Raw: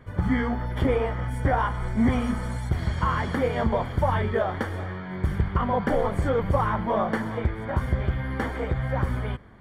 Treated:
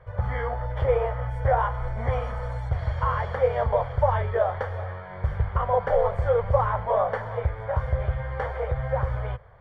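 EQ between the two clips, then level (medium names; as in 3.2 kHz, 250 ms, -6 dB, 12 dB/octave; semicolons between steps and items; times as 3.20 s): FFT filter 120 Hz 0 dB, 280 Hz -29 dB, 500 Hz +5 dB, 5.6 kHz -11 dB, 9.6 kHz -21 dB; 0.0 dB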